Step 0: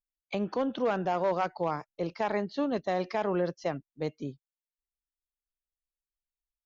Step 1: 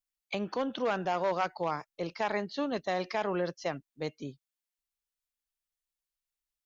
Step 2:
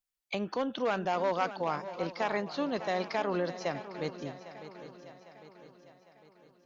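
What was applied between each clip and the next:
tilt shelf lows -4 dB, about 1100 Hz
swung echo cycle 0.803 s, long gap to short 3:1, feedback 47%, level -13 dB

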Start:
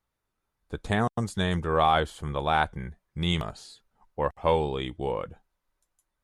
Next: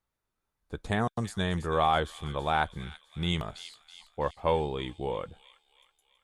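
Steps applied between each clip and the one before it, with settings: thin delay 0.327 s, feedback 52%, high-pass 2800 Hz, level -9 dB; gain -3 dB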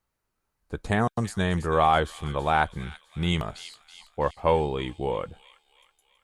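notch 3500 Hz, Q 11; gain +4.5 dB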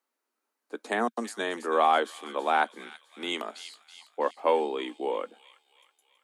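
steep high-pass 230 Hz 72 dB/oct; gain -1.5 dB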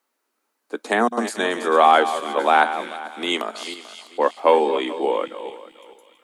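regenerating reverse delay 0.22 s, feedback 45%, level -11 dB; gain +8.5 dB

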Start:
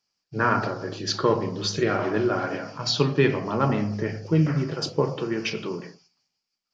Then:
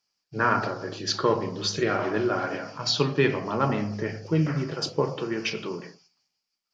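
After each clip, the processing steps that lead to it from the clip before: low shelf 370 Hz -4 dB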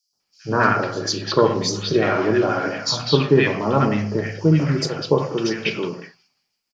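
three bands offset in time highs, lows, mids 0.13/0.2 s, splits 1200/4200 Hz; gain +7.5 dB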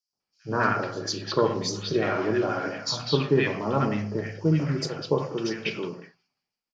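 mismatched tape noise reduction decoder only; gain -6.5 dB

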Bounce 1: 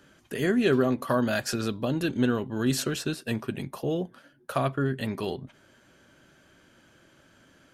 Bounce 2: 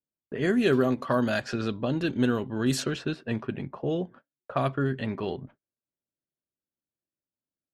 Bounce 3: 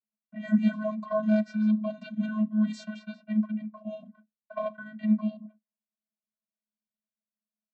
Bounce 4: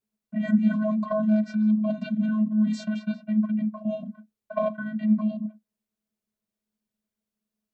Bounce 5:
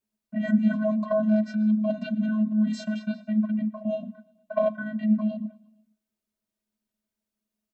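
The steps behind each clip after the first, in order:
low-pass opened by the level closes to 690 Hz, open at -20 dBFS; gate -49 dBFS, range -39 dB; ending taper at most 510 dB/s
vocoder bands 32, square 214 Hz
low shelf 330 Hz +12 dB; in parallel at +1.5 dB: negative-ratio compressor -28 dBFS, ratio -1; on the sum: bell 430 Hz +10.5 dB 0.31 oct; gain -7 dB
comb 3.2 ms, depth 39%; feedback echo 0.116 s, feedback 60%, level -24 dB

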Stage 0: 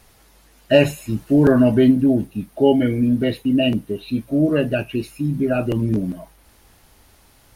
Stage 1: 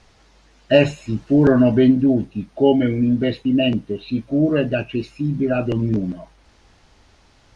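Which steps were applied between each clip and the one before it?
LPF 6600 Hz 24 dB/oct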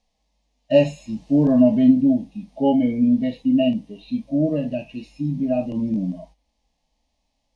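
gate -44 dBFS, range -14 dB; harmonic-percussive split percussive -14 dB; fixed phaser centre 380 Hz, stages 6; gain +1.5 dB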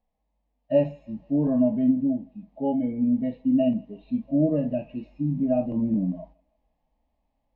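LPF 1500 Hz 12 dB/oct; vocal rider 2 s; thinning echo 0.16 s, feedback 66%, high-pass 690 Hz, level -24 dB; gain -4.5 dB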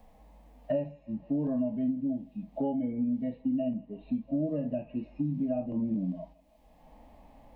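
three-band squash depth 100%; gain -7.5 dB

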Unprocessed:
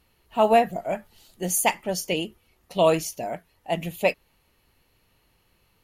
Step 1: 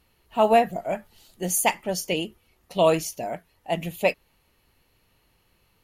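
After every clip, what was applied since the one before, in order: nothing audible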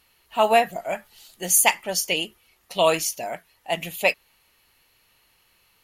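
tilt shelf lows -7 dB, about 670 Hz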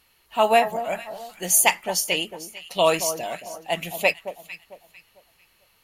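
echo with dull and thin repeats by turns 0.224 s, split 1200 Hz, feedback 52%, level -10 dB

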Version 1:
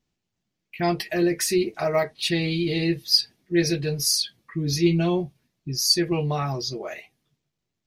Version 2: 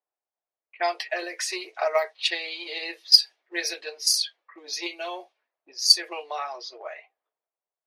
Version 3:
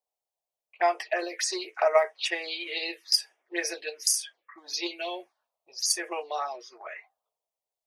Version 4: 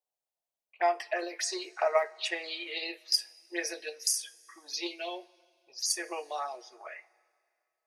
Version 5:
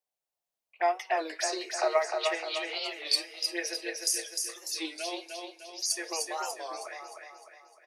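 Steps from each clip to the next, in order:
low-pass opened by the level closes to 940 Hz, open at -18 dBFS; transient shaper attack +7 dB, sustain +3 dB; inverse Chebyshev high-pass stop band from 170 Hz, stop band 60 dB; gain -2 dB
envelope phaser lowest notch 260 Hz, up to 4200 Hz, full sweep at -25 dBFS; gain +2.5 dB
two-slope reverb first 0.24 s, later 2.3 s, from -19 dB, DRR 13.5 dB; gain -4 dB
on a send: feedback echo 0.304 s, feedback 48%, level -4.5 dB; on the sum: record warp 33 1/3 rpm, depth 160 cents

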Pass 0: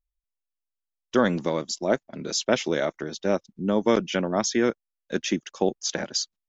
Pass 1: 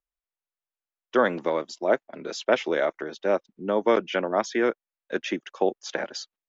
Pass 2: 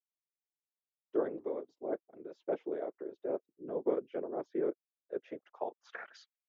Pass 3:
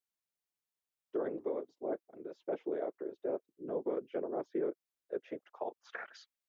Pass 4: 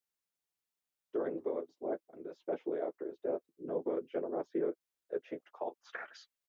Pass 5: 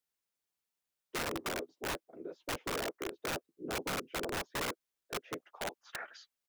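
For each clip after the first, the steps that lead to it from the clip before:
three-band isolator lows -16 dB, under 320 Hz, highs -16 dB, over 3100 Hz; gain +2.5 dB
whisperiser; band-pass sweep 380 Hz -> 2300 Hz, 5.05–6.3; gain -7 dB
limiter -27.5 dBFS, peak gain reduction 8 dB; gain +1.5 dB
doubler 12 ms -9 dB
wrapped overs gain 31.5 dB; gain +1 dB

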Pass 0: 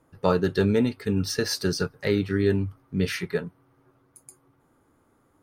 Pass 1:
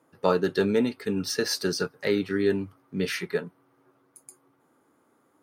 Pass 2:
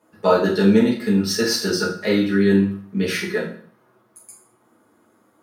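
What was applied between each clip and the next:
HPF 210 Hz 12 dB/oct
reverb RT60 0.55 s, pre-delay 5 ms, DRR -5.5 dB

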